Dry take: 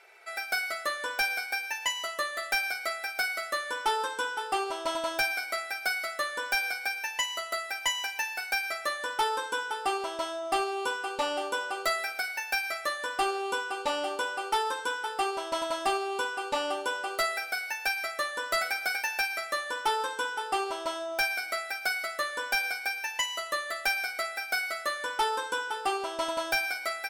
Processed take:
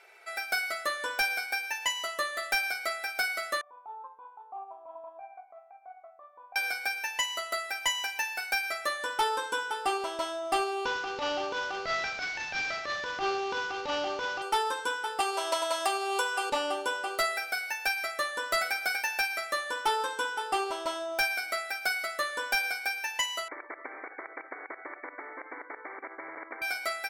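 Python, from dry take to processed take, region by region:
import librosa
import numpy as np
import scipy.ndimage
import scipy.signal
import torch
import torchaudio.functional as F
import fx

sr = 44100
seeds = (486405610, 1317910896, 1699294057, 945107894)

y = fx.chain(x, sr, fx.transient(attack_db=-10, sustain_db=-4),
    fx.formant_cascade(vowel='a'), at=(3.61, 6.56))
y = fx.chain(y, sr, fx.cvsd(bps=32000),
    fx.transient(attack_db=-11, sustain_db=4), at=(10.85, 14.42))
y = fx.chain(y, sr, fx.highpass(hz=390.0, slope=24),
    fx.high_shelf(hz=5200.0, db=6.0),
    fx.band_squash(depth_pct=100), at=(15.2, 16.5))
y = fx.chain(y, sr, fx.level_steps(step_db=17),
    fx.brickwall_bandpass(low_hz=270.0, high_hz=2300.0),
    fx.spectral_comp(ratio=10.0), at=(23.48, 26.62))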